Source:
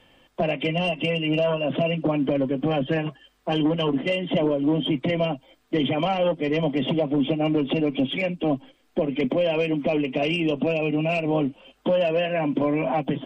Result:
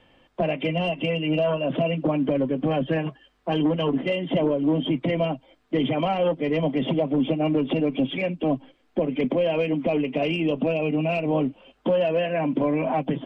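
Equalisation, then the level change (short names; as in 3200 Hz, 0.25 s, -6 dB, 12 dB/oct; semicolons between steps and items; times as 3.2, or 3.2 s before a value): LPF 2700 Hz 6 dB/oct; 0.0 dB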